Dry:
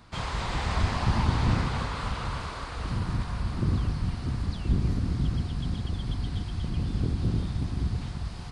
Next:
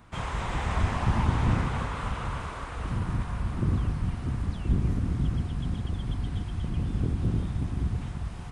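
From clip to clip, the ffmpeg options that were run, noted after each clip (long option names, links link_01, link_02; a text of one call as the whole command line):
ffmpeg -i in.wav -af "equalizer=frequency=4500:width=2.3:gain=-12" out.wav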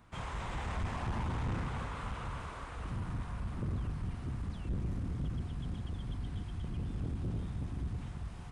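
ffmpeg -i in.wav -af "asoftclip=type=tanh:threshold=-22.5dB,volume=-7dB" out.wav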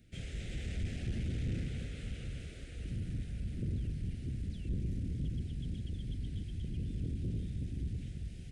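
ffmpeg -i in.wav -af "asuperstop=centerf=1000:order=4:qfactor=0.55" out.wav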